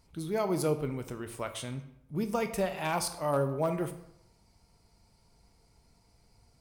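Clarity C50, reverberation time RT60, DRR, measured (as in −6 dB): 11.5 dB, 0.75 s, 8.5 dB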